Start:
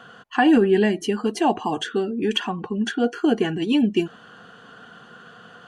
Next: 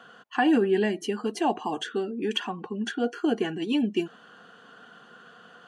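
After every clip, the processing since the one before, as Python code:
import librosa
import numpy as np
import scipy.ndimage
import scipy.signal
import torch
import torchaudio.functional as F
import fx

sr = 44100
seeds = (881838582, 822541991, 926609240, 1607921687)

y = scipy.signal.sosfilt(scipy.signal.butter(2, 190.0, 'highpass', fs=sr, output='sos'), x)
y = y * 10.0 ** (-5.0 / 20.0)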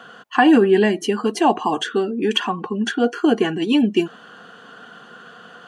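y = fx.dynamic_eq(x, sr, hz=1100.0, q=4.4, threshold_db=-50.0, ratio=4.0, max_db=5)
y = y * 10.0 ** (8.5 / 20.0)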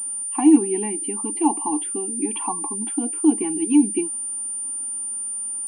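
y = fx.spec_box(x, sr, start_s=2.12, length_s=0.87, low_hz=540.0, high_hz=1400.0, gain_db=7)
y = fx.vowel_filter(y, sr, vowel='u')
y = fx.pwm(y, sr, carrier_hz=9200.0)
y = y * 10.0 ** (3.5 / 20.0)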